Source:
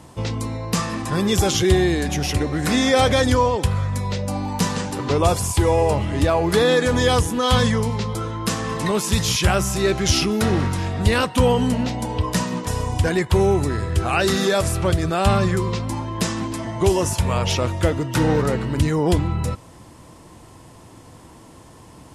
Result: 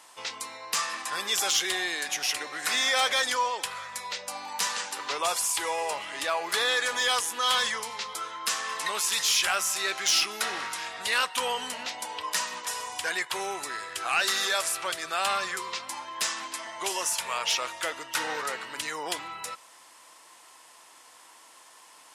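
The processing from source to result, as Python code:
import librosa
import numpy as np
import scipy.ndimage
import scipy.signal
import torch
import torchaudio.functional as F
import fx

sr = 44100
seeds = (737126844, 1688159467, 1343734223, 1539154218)

y = scipy.signal.sosfilt(scipy.signal.butter(2, 1200.0, 'highpass', fs=sr, output='sos'), x)
y = 10.0 ** (-15.0 / 20.0) * np.tanh(y / 10.0 ** (-15.0 / 20.0))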